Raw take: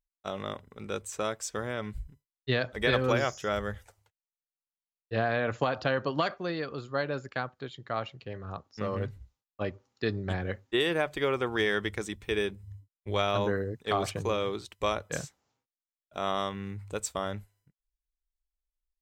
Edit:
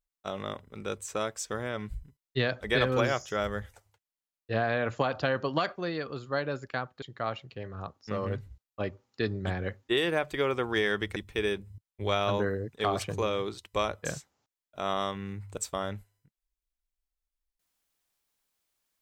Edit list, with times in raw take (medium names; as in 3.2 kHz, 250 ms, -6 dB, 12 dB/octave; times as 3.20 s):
shrink pauses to 55%